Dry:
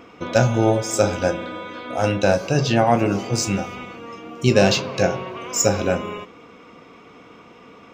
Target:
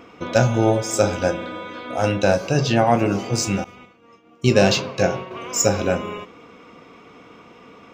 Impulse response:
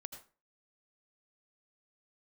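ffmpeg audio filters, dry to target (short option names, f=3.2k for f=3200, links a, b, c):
-filter_complex "[0:a]asettb=1/sr,asplit=3[a][b][c];[a]atrim=end=3.644[d];[b]atrim=start=3.64:end=5.31,asetpts=PTS-STARTPTS,afade=t=in:d=0.004:c=qsin,afade=t=out:st=1.666:d=0.004:c=qsin,agate=range=-33dB:threshold=-25dB:ratio=3:detection=peak[e];[c]atrim=start=5.306[f];[d][e]acrossfade=d=0.004:c1=hsin:c2=qsin[g];[g][f]acrossfade=d=0.004:c1=qsin:c2=hsin"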